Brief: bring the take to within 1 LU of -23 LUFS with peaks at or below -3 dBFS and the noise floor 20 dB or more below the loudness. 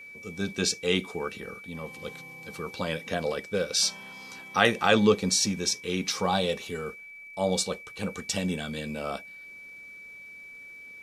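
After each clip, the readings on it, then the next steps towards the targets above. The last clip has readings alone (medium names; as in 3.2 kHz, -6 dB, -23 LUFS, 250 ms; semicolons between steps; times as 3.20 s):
tick rate 33 per s; steady tone 2.3 kHz; tone level -43 dBFS; loudness -28.0 LUFS; peak level -5.0 dBFS; loudness target -23.0 LUFS
-> de-click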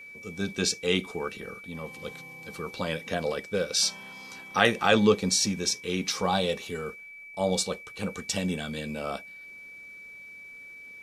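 tick rate 0.27 per s; steady tone 2.3 kHz; tone level -43 dBFS
-> band-stop 2.3 kHz, Q 30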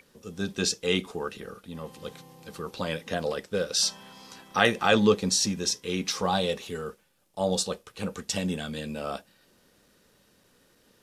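steady tone not found; loudness -27.5 LUFS; peak level -5.5 dBFS; loudness target -23.0 LUFS
-> trim +4.5 dB; peak limiter -3 dBFS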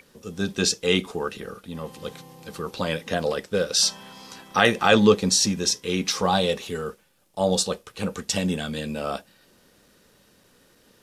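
loudness -23.5 LUFS; peak level -3.0 dBFS; noise floor -59 dBFS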